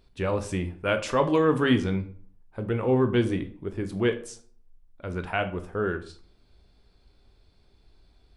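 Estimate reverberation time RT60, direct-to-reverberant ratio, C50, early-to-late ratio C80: 0.45 s, 7.5 dB, 13.0 dB, 17.5 dB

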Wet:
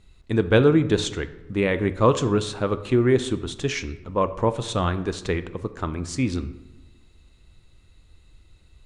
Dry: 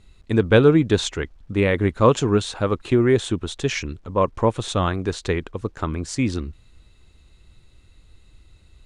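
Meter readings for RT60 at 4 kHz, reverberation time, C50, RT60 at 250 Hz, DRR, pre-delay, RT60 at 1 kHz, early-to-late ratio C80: 0.65 s, 1.1 s, 14.0 dB, 1.4 s, 11.0 dB, 3 ms, 1.0 s, 16.5 dB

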